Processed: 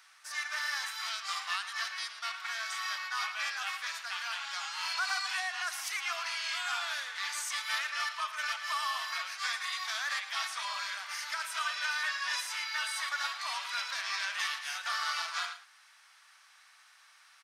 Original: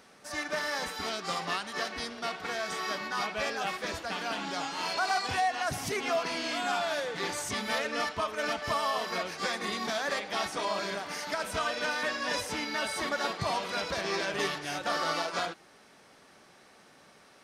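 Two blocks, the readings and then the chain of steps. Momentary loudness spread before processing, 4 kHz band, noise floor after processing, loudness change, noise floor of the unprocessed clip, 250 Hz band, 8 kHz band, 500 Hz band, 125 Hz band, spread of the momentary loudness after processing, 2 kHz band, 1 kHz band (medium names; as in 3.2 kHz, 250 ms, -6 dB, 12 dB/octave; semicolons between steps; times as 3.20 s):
5 LU, 0.0 dB, -61 dBFS, -2.0 dB, -58 dBFS, under -40 dB, 0.0 dB, -22.0 dB, under -40 dB, 4 LU, 0.0 dB, -5.0 dB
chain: inverse Chebyshev high-pass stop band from 250 Hz, stop band 70 dB; on a send: delay 112 ms -13 dB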